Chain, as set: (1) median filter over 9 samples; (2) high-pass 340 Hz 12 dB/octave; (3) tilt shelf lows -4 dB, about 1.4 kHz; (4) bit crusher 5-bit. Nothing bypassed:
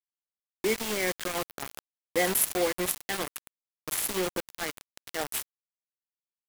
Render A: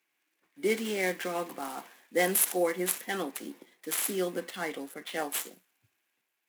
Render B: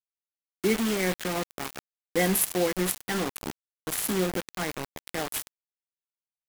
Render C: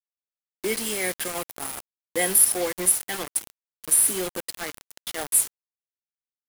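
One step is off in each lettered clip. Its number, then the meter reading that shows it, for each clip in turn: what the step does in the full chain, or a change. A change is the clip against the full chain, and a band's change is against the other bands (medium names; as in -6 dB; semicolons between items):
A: 4, 4 kHz band -3.0 dB; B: 2, 125 Hz band +8.5 dB; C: 1, 8 kHz band +11.0 dB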